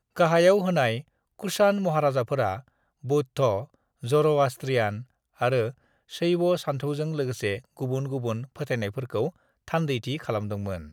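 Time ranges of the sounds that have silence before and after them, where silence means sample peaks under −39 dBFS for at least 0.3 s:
0:01.39–0:02.60
0:03.04–0:03.64
0:04.03–0:05.03
0:05.41–0:05.71
0:06.12–0:09.30

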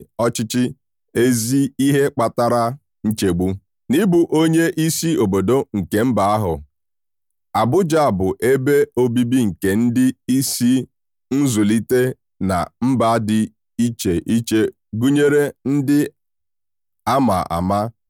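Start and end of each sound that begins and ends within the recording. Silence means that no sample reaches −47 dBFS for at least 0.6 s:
0:07.54–0:16.10

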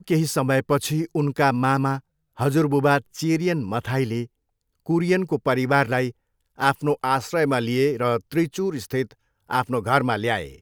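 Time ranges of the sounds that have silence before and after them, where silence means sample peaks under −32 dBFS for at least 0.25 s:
0:02.39–0:04.25
0:04.89–0:06.11
0:06.60–0:09.11

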